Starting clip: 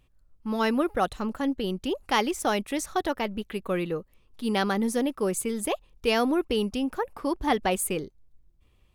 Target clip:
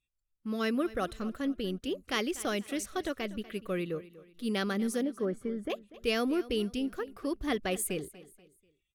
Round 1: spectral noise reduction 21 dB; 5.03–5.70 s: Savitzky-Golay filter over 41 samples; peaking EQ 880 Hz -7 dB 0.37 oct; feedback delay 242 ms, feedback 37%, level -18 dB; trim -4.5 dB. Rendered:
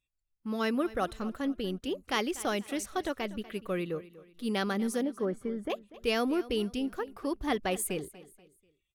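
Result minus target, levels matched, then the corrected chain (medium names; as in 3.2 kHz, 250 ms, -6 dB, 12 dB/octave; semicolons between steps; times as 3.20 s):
1 kHz band +3.0 dB
spectral noise reduction 21 dB; 5.03–5.70 s: Savitzky-Golay filter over 41 samples; peaking EQ 880 Hz -16.5 dB 0.37 oct; feedback delay 242 ms, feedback 37%, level -18 dB; trim -4.5 dB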